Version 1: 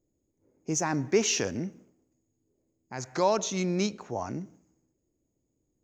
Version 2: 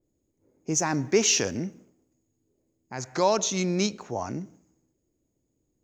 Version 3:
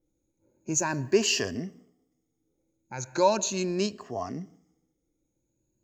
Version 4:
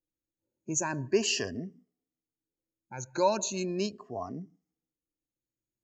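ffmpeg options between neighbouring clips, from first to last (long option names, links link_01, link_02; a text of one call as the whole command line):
ffmpeg -i in.wav -af "adynamicequalizer=threshold=0.01:dfrequency=2800:dqfactor=0.7:tfrequency=2800:tqfactor=0.7:attack=5:release=100:ratio=0.375:range=2:mode=boostabove:tftype=highshelf,volume=2dB" out.wav
ffmpeg -i in.wav -af "afftfilt=real='re*pow(10,13/40*sin(2*PI*(1.4*log(max(b,1)*sr/1024/100)/log(2)-(0.39)*(pts-256)/sr)))':imag='im*pow(10,13/40*sin(2*PI*(1.4*log(max(b,1)*sr/1024/100)/log(2)-(0.39)*(pts-256)/sr)))':win_size=1024:overlap=0.75,volume=-4dB" out.wav
ffmpeg -i in.wav -af "afftdn=noise_reduction=15:noise_floor=-43,volume=-3.5dB" out.wav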